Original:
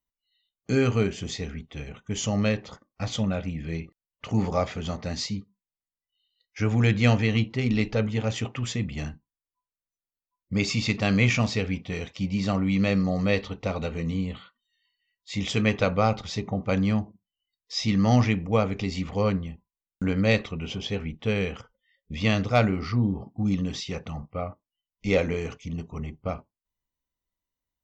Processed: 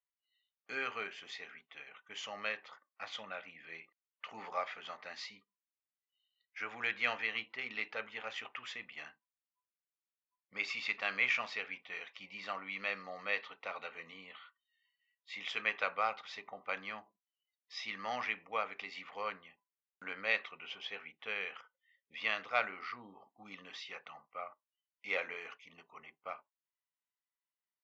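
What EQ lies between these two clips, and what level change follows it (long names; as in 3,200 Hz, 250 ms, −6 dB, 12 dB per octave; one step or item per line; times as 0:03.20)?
high-pass filter 1,400 Hz 12 dB per octave
low-pass filter 2,100 Hz 12 dB per octave
0.0 dB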